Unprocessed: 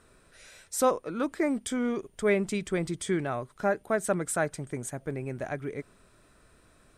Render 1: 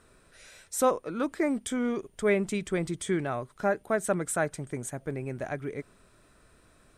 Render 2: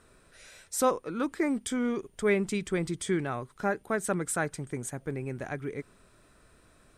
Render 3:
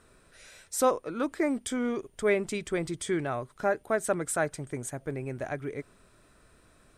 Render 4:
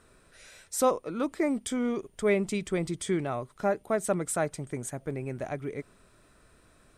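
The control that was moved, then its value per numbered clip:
dynamic equaliser, frequency: 4,800, 630, 190, 1,600 Hertz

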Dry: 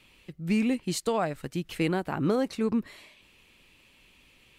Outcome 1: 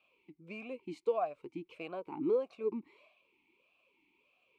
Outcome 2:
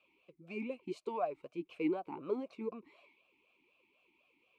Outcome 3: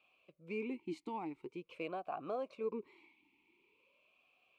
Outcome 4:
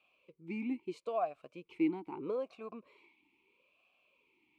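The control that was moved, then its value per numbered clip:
formant filter swept between two vowels, speed: 1.6, 4, 0.46, 0.77 Hertz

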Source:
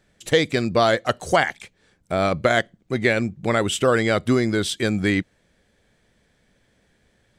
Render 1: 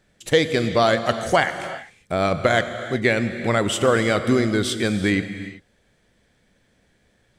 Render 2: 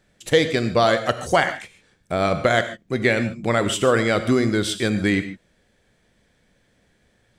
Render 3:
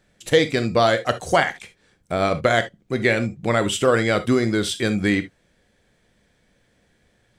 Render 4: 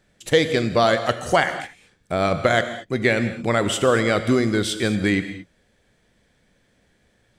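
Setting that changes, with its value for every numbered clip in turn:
reverb whose tail is shaped and stops, gate: 410, 170, 90, 250 milliseconds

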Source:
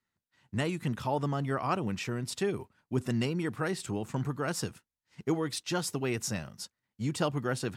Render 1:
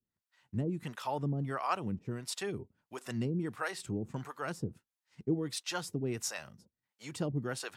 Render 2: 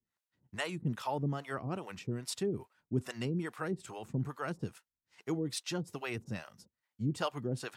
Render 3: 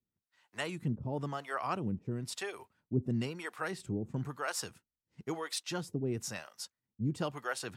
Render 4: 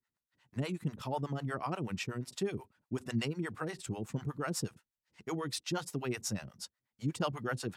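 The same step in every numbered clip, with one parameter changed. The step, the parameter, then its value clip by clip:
two-band tremolo in antiphase, speed: 1.5, 2.4, 1, 8.2 Hertz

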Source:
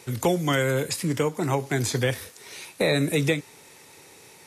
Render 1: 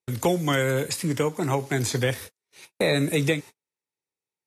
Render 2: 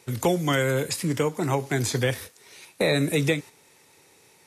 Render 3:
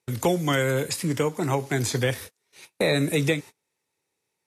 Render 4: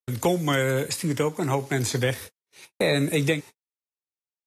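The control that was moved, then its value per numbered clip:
noise gate, range: −44, −7, −30, −59 decibels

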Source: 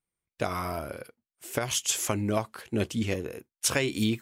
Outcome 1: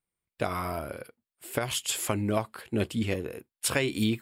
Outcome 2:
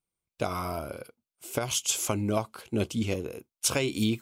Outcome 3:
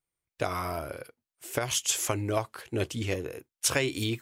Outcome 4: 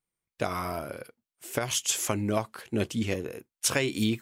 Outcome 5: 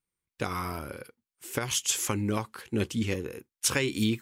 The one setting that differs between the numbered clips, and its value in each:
parametric band, centre frequency: 6,100, 1,800, 210, 72, 650 Hertz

